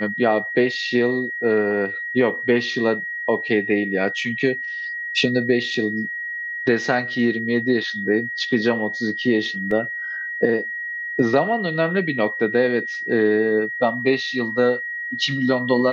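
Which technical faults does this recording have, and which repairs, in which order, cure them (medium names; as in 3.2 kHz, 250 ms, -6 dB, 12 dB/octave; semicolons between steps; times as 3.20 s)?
whine 1.9 kHz -26 dBFS
9.71 s: dropout 3 ms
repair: band-stop 1.9 kHz, Q 30; interpolate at 9.71 s, 3 ms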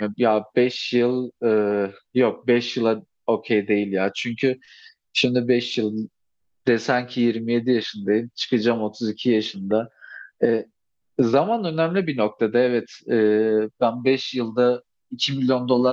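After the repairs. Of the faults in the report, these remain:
nothing left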